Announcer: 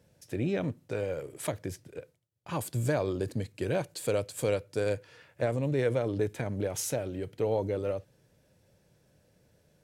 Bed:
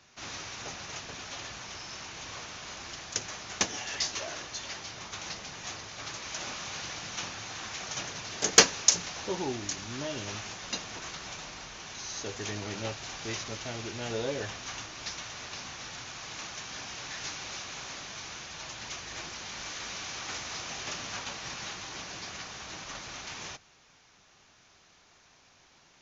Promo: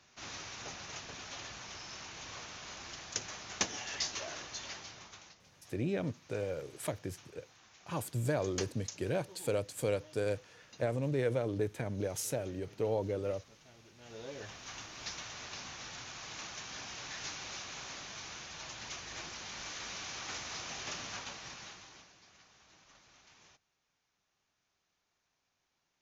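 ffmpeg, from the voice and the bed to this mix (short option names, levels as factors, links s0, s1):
-filter_complex "[0:a]adelay=5400,volume=0.631[s0];[1:a]volume=4.73,afade=t=out:st=4.68:d=0.67:silence=0.133352,afade=t=in:st=13.96:d=1.12:silence=0.125893,afade=t=out:st=21.01:d=1.13:silence=0.141254[s1];[s0][s1]amix=inputs=2:normalize=0"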